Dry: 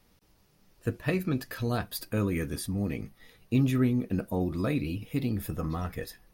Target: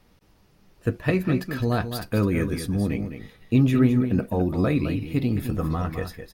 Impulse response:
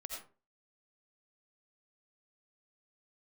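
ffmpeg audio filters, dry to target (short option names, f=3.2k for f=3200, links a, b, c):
-filter_complex "[0:a]highshelf=f=5.1k:g=-8.5,asplit=2[a][b];[b]aecho=0:1:210:0.355[c];[a][c]amix=inputs=2:normalize=0,volume=6dB"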